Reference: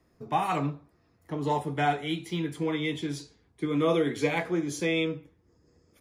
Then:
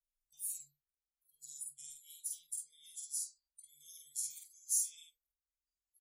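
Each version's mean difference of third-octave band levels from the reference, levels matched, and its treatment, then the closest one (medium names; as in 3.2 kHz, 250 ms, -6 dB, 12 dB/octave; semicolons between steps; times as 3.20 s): 23.5 dB: inverse Chebyshev band-stop 170–1700 Hz, stop band 80 dB; spectral noise reduction 28 dB; doubling 49 ms -2.5 dB; trim +13 dB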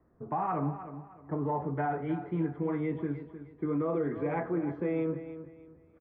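8.5 dB: inverse Chebyshev low-pass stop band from 8.1 kHz, stop band 80 dB; peak limiter -23 dBFS, peak gain reduction 9 dB; on a send: feedback delay 308 ms, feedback 30%, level -12 dB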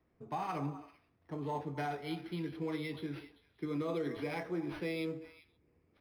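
4.5 dB: peak limiter -20 dBFS, peak gain reduction 6 dB; repeats whose band climbs or falls 130 ms, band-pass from 360 Hz, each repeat 1.4 oct, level -9.5 dB; decimation joined by straight lines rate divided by 6×; trim -8 dB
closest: third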